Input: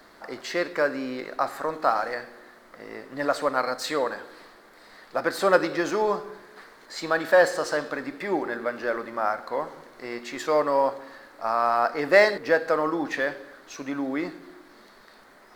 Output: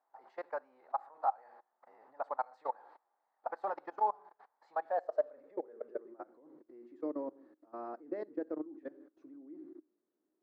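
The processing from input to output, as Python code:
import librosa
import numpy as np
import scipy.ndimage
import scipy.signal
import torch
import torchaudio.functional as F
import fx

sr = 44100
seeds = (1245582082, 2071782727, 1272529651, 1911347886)

y = fx.level_steps(x, sr, step_db=24)
y = fx.filter_sweep_bandpass(y, sr, from_hz=830.0, to_hz=320.0, start_s=7.05, end_s=9.54, q=6.8)
y = fx.stretch_vocoder(y, sr, factor=0.67)
y = y * 10.0 ** (3.5 / 20.0)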